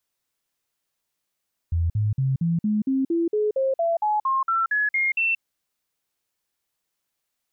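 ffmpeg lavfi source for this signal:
ffmpeg -f lavfi -i "aevalsrc='0.112*clip(min(mod(t,0.23),0.18-mod(t,0.23))/0.005,0,1)*sin(2*PI*84*pow(2,floor(t/0.23)/3)*mod(t,0.23))':duration=3.68:sample_rate=44100" out.wav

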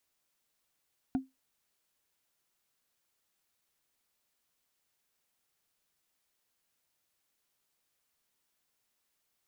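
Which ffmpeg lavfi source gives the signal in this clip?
ffmpeg -f lavfi -i "aevalsrc='0.0708*pow(10,-3*t/0.19)*sin(2*PI*264*t)+0.0224*pow(10,-3*t/0.056)*sin(2*PI*727.8*t)+0.00708*pow(10,-3*t/0.025)*sin(2*PI*1426.7*t)+0.00224*pow(10,-3*t/0.014)*sin(2*PI*2358.3*t)+0.000708*pow(10,-3*t/0.008)*sin(2*PI*3521.8*t)':duration=0.45:sample_rate=44100" out.wav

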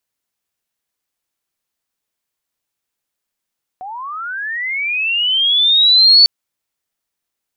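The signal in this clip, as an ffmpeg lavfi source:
ffmpeg -f lavfi -i "aevalsrc='pow(10,(-26+22*t/2.45)/20)*sin(2*PI*(720*t+3780*t*t/(2*2.45)))':duration=2.45:sample_rate=44100" out.wav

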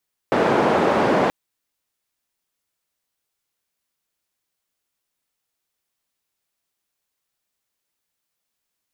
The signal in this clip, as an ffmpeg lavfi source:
ffmpeg -f lavfi -i "anoisesrc=color=white:duration=0.98:sample_rate=44100:seed=1,highpass=frequency=200,lowpass=frequency=750,volume=2.3dB" out.wav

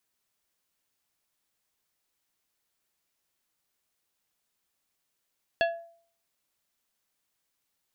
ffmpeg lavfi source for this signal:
ffmpeg -f lavfi -i "aevalsrc='0.1*pow(10,-3*t/0.52)*sin(2*PI*674*t)+0.0631*pow(10,-3*t/0.274)*sin(2*PI*1685*t)+0.0398*pow(10,-3*t/0.197)*sin(2*PI*2696*t)+0.0251*pow(10,-3*t/0.169)*sin(2*PI*3370*t)+0.0158*pow(10,-3*t/0.14)*sin(2*PI*4381*t)':duration=0.89:sample_rate=44100" out.wav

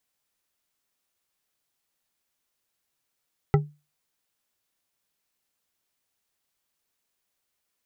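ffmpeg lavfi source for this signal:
ffmpeg -f lavfi -i "aevalsrc='0.224*pow(10,-3*t/0.28)*sin(2*PI*148*t)+0.141*pow(10,-3*t/0.138)*sin(2*PI*408*t)+0.0891*pow(10,-3*t/0.086)*sin(2*PI*799.8*t)+0.0562*pow(10,-3*t/0.06)*sin(2*PI*1322.1*t)+0.0355*pow(10,-3*t/0.046)*sin(2*PI*1974.3*t)':duration=0.89:sample_rate=44100" out.wav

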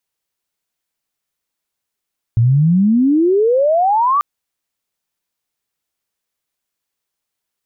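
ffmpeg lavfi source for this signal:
ffmpeg -f lavfi -i "aevalsrc='pow(10,(-8.5-2.5*t/1.84)/20)*sin(2*PI*110*1.84/log(1200/110)*(exp(log(1200/110)*t/1.84)-1))':duration=1.84:sample_rate=44100" out.wav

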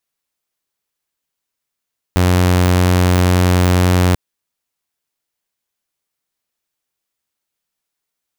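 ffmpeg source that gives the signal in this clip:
ffmpeg -f lavfi -i "aevalsrc='0.422*(2*mod(90.2*t,1)-1)':duration=1.99:sample_rate=44100" out.wav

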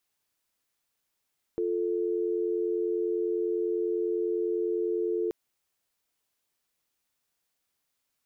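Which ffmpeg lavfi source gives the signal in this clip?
ffmpeg -f lavfi -i "aevalsrc='0.0376*(sin(2*PI*350*t)+sin(2*PI*440*t))':duration=3.73:sample_rate=44100" out.wav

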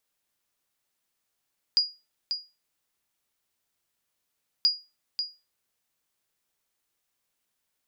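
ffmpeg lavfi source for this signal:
ffmpeg -f lavfi -i "aevalsrc='0.2*(sin(2*PI*4870*mod(t,2.88))*exp(-6.91*mod(t,2.88)/0.27)+0.398*sin(2*PI*4870*max(mod(t,2.88)-0.54,0))*exp(-6.91*max(mod(t,2.88)-0.54,0)/0.27))':duration=5.76:sample_rate=44100" out.wav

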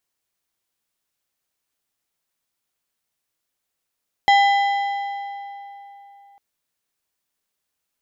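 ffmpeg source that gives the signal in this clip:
ffmpeg -f lavfi -i "aevalsrc='0.282*pow(10,-3*t/3.35)*sin(2*PI*801*t)+0.141*pow(10,-3*t/2.545)*sin(2*PI*2002.5*t)+0.0708*pow(10,-3*t/2.21)*sin(2*PI*3204*t)+0.0355*pow(10,-3*t/2.067)*sin(2*PI*4005*t)+0.0178*pow(10,-3*t/1.911)*sin(2*PI*5206.5*t)+0.00891*pow(10,-3*t/1.763)*sin(2*PI*6808.5*t)':duration=2.1:sample_rate=44100" out.wav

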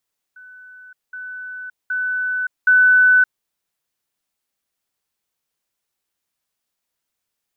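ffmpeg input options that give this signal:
ffmpeg -f lavfi -i "aevalsrc='pow(10,(-39+10*floor(t/0.77))/20)*sin(2*PI*1500*t)*clip(min(mod(t,0.77),0.57-mod(t,0.77))/0.005,0,1)':duration=3.08:sample_rate=44100" out.wav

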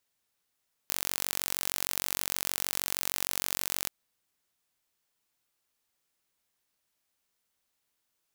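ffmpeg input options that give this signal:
ffmpeg -f lavfi -i "aevalsrc='0.668*eq(mod(n,950),0)':duration=2.98:sample_rate=44100" out.wav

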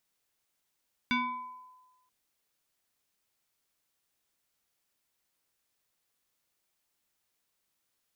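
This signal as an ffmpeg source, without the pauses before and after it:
ffmpeg -f lavfi -i "aevalsrc='0.0668*pow(10,-3*t/1.21)*sin(2*PI*1010*t+2*pow(10,-3*t/0.94)*sin(2*PI*1.24*1010*t))':duration=0.98:sample_rate=44100" out.wav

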